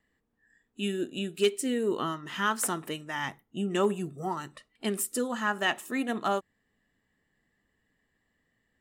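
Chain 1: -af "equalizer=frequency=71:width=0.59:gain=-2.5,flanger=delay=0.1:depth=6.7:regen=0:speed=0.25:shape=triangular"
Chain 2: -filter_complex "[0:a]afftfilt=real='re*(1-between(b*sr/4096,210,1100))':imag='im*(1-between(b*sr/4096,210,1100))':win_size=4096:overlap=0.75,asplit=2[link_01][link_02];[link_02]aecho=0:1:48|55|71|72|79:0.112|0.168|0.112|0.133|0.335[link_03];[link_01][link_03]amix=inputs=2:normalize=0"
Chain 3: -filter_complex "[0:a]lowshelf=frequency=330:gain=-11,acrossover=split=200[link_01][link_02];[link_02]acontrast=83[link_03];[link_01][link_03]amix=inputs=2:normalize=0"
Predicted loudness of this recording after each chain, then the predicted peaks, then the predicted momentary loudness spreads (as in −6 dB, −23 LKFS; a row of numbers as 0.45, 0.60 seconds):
−34.0, −33.5, −26.5 LKFS; −14.5, −16.0, −7.5 dBFS; 10, 10, 10 LU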